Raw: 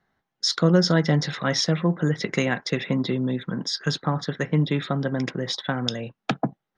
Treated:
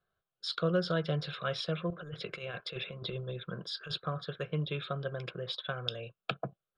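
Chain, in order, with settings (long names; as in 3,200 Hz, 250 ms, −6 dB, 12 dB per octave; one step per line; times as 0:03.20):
dynamic equaliser 2,500 Hz, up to +5 dB, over −45 dBFS, Q 1.6
0:01.90–0:04.00: compressor whose output falls as the input rises −25 dBFS, ratio −0.5
phaser with its sweep stopped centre 1,300 Hz, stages 8
level −7.5 dB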